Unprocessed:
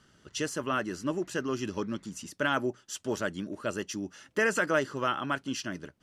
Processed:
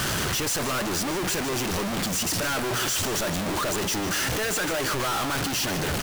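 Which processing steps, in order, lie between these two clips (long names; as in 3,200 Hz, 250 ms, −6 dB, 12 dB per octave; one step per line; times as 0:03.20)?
sign of each sample alone
parametric band 240 Hz −4.5 dB 0.86 octaves
single-tap delay 150 ms −12 dB
level +6.5 dB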